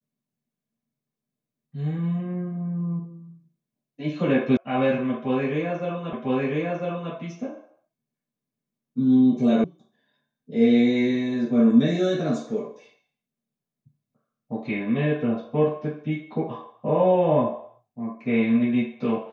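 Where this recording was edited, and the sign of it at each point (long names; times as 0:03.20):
0:04.57: cut off before it has died away
0:06.13: the same again, the last 1 s
0:09.64: cut off before it has died away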